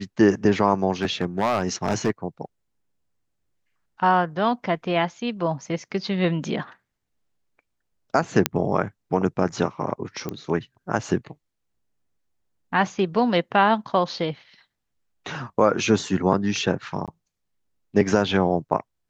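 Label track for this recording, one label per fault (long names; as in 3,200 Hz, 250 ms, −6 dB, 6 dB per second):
1.020000	2.100000	clipping −16 dBFS
8.460000	8.460000	click −1 dBFS
10.290000	10.290000	click −16 dBFS
17.060000	17.080000	drop-out 17 ms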